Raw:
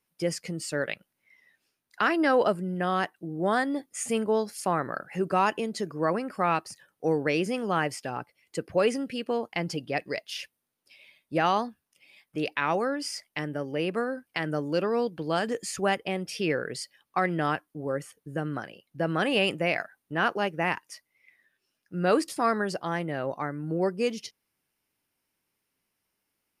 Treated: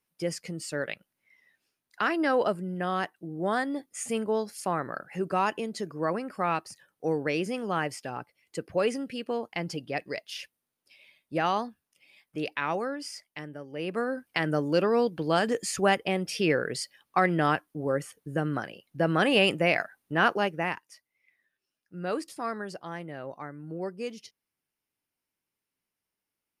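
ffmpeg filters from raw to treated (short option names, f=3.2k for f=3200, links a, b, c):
-af "volume=10dB,afade=t=out:st=12.55:d=1.14:silence=0.421697,afade=t=in:st=13.69:d=0.54:silence=0.237137,afade=t=out:st=20.3:d=0.56:silence=0.298538"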